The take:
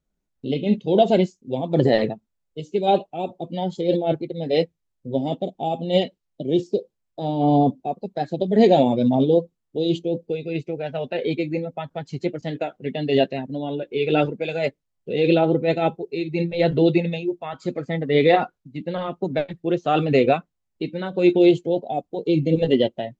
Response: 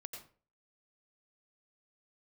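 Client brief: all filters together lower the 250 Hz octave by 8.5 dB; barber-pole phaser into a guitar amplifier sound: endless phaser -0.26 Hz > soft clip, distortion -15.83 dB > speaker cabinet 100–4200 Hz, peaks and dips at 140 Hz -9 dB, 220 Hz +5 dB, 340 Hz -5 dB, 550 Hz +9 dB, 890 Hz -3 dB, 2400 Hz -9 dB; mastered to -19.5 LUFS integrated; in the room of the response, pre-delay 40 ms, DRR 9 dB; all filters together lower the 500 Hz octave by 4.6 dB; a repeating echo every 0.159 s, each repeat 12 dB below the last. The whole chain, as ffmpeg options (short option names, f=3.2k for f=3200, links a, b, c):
-filter_complex "[0:a]equalizer=f=250:t=o:g=-7.5,equalizer=f=500:t=o:g=-8.5,aecho=1:1:159|318|477:0.251|0.0628|0.0157,asplit=2[a][b];[1:a]atrim=start_sample=2205,adelay=40[c];[b][c]afir=irnorm=-1:irlink=0,volume=-5.5dB[d];[a][d]amix=inputs=2:normalize=0,asplit=2[e][f];[f]afreqshift=-0.26[g];[e][g]amix=inputs=2:normalize=1,asoftclip=threshold=-21dB,highpass=100,equalizer=f=140:t=q:w=4:g=-9,equalizer=f=220:t=q:w=4:g=5,equalizer=f=340:t=q:w=4:g=-5,equalizer=f=550:t=q:w=4:g=9,equalizer=f=890:t=q:w=4:g=-3,equalizer=f=2.4k:t=q:w=4:g=-9,lowpass=f=4.2k:w=0.5412,lowpass=f=4.2k:w=1.3066,volume=12.5dB"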